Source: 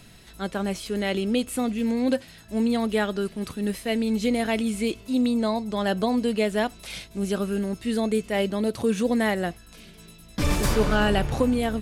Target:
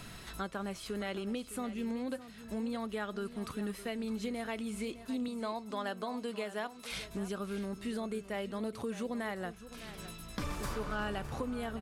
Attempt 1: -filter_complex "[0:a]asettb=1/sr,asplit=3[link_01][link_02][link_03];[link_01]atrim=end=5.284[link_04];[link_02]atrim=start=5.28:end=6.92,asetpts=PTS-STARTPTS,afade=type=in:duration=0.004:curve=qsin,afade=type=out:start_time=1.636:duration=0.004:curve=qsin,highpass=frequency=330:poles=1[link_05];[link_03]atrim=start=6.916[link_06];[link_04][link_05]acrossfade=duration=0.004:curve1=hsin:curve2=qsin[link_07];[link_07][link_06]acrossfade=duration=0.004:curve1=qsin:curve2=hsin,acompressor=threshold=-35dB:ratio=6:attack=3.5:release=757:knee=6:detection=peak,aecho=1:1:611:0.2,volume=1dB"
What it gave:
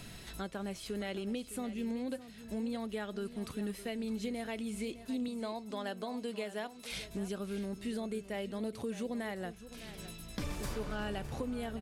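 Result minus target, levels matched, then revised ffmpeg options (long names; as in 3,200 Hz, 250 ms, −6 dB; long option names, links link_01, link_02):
1,000 Hz band −3.0 dB
-filter_complex "[0:a]asettb=1/sr,asplit=3[link_01][link_02][link_03];[link_01]atrim=end=5.284[link_04];[link_02]atrim=start=5.28:end=6.92,asetpts=PTS-STARTPTS,afade=type=in:duration=0.004:curve=qsin,afade=type=out:start_time=1.636:duration=0.004:curve=qsin,highpass=frequency=330:poles=1[link_05];[link_03]atrim=start=6.916[link_06];[link_04][link_05]acrossfade=duration=0.004:curve1=hsin:curve2=qsin[link_07];[link_07][link_06]acrossfade=duration=0.004:curve1=qsin:curve2=hsin,acompressor=threshold=-35dB:ratio=6:attack=3.5:release=757:knee=6:detection=peak,equalizer=frequency=1200:width=1.7:gain=7.5,aecho=1:1:611:0.2,volume=1dB"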